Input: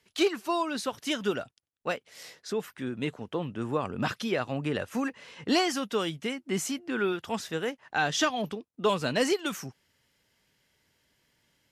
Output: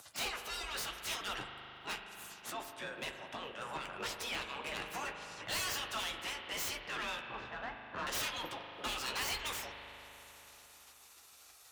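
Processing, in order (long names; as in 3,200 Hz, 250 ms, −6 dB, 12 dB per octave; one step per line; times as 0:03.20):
stylus tracing distortion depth 0.13 ms
0:07.20–0:08.07: low-pass filter 1,100 Hz 12 dB per octave
gate on every frequency bin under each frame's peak −15 dB weak
upward compression, threshold −47 dBFS
pitch vibrato 9.2 Hz 25 cents
frequency shifter +34 Hz
soft clipping −37 dBFS, distortion −7 dB
flanger 0.73 Hz, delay 9.4 ms, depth 8.2 ms, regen −36%
spring reverb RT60 3.7 s, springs 39 ms, chirp 80 ms, DRR 5 dB
level +7 dB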